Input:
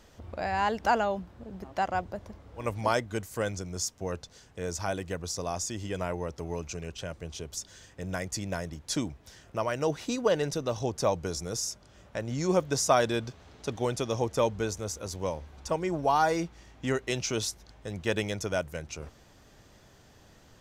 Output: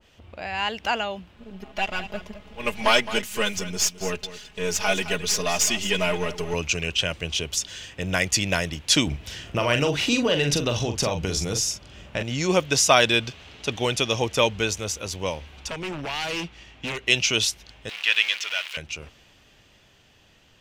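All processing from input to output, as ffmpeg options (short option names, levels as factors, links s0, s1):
-filter_complex "[0:a]asettb=1/sr,asplit=3[s0][s1][s2];[s0]atrim=end=1.364[s3];[s1]atrim=start=1.36:end=6.54,asetpts=PTS-STARTPTS,afade=t=in:d=0.004:c=qsin,afade=t=out:st=5.176:d=0.004:c=qsin,aeval=exprs='if(lt(val(0),0),0.447*val(0),val(0))':c=same,aecho=1:1:4.8:0.93,atrim=end_sample=228438,aecho=1:1:214:0.2,atrim=end_sample=228438[s4];[s2]atrim=start=6.536[s5];[s3][s4]acrossfade=d=0.004:c1=hsin:c2=qsin[s6];[s6][s5]acrossfade=d=0.004:c1=qsin:c2=hsin,asettb=1/sr,asplit=3[s7][s8][s9];[s7]atrim=end=9.074[s10];[s8]atrim=start=9.07:end=12.23,asetpts=PTS-STARTPTS,afade=t=in:d=0.004:c=qsin,afade=t=out:st=3.156:d=0.004:c=qsin,lowshelf=f=400:g=6.5,acompressor=threshold=0.0447:ratio=5:attack=3.2:release=140:knee=1:detection=peak,asplit=2[s11][s12];[s12]adelay=42,volume=0.447[s13];[s11][s13]amix=inputs=2:normalize=0,atrim=end_sample=139356[s14];[s9]atrim=start=12.226[s15];[s10][s14]acrossfade=d=0.004:c1=hsin:c2=qsin[s16];[s16][s15]acrossfade=d=0.004:c1=qsin:c2=hsin,asettb=1/sr,asplit=3[s17][s18][s19];[s17]atrim=end=15.694[s20];[s18]atrim=start=15.69:end=17.06,asetpts=PTS-STARTPTS,afade=t=in:d=0.004:c=qsin,afade=t=out:st=1.366:d=0.004:c=qsin,acrossover=split=240|3000[s21][s22][s23];[s22]acompressor=threshold=0.0282:ratio=6:attack=3.2:release=140:knee=2.83:detection=peak[s24];[s21][s24][s23]amix=inputs=3:normalize=0,aeval=exprs='0.0335*(abs(mod(val(0)/0.0335+3,4)-2)-1)':c=same,highshelf=f=8600:g=-7[s25];[s19]atrim=start=17.056[s26];[s20][s25]acrossfade=d=0.004:c1=hsin:c2=qsin[s27];[s27][s26]acrossfade=d=0.004:c1=qsin:c2=hsin,asettb=1/sr,asplit=3[s28][s29][s30];[s28]atrim=end=17.894[s31];[s29]atrim=start=17.89:end=18.77,asetpts=PTS-STARTPTS,afade=t=in:d=0.004:c=qsin,afade=t=out:st=0.876:d=0.004:c=qsin,aeval=exprs='val(0)+0.5*0.0316*sgn(val(0))':c=same,acrossover=split=5400[s32][s33];[s33]acompressor=threshold=0.00178:ratio=4:attack=1:release=60[s34];[s32][s34]amix=inputs=2:normalize=0,highpass=1500[s35];[s30]atrim=start=18.766[s36];[s31][s35]acrossfade=d=0.004:c1=hsin:c2=qsin[s37];[s37][s36]acrossfade=d=0.004:c1=qsin:c2=hsin,equalizer=f=2800:w=1.6:g=13.5,dynaudnorm=f=190:g=21:m=3.76,adynamicequalizer=threshold=0.0355:dfrequency=1500:dqfactor=0.7:tfrequency=1500:tqfactor=0.7:attack=5:release=100:ratio=0.375:range=2:mode=boostabove:tftype=highshelf,volume=0.668"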